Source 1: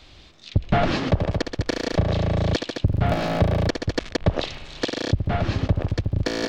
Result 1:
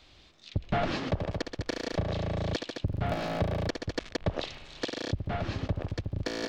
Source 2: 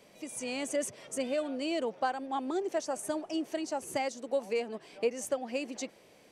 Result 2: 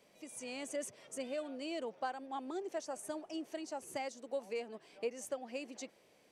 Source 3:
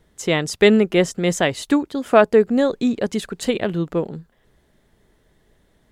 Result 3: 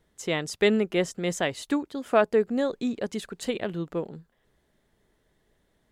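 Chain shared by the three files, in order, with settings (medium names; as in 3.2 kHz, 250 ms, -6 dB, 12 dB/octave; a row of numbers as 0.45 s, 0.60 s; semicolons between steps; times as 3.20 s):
bass shelf 210 Hz -3.5 dB; trim -7.5 dB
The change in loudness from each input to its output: -9.0 LU, -8.0 LU, -8.5 LU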